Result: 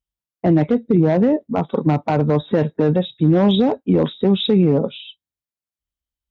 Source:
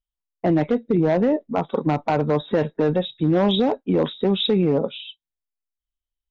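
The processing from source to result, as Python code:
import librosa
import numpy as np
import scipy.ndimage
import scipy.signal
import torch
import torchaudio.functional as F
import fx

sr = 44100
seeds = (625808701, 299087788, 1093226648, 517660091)

y = scipy.signal.sosfilt(scipy.signal.butter(2, 64.0, 'highpass', fs=sr, output='sos'), x)
y = fx.low_shelf(y, sr, hz=250.0, db=9.5)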